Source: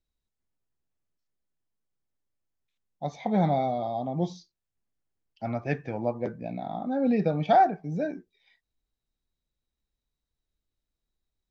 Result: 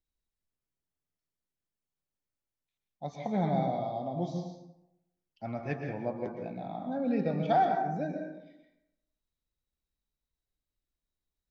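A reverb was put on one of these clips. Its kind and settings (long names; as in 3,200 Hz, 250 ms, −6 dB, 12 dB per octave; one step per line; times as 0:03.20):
dense smooth reverb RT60 0.89 s, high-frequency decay 0.55×, pre-delay 105 ms, DRR 3.5 dB
level −6 dB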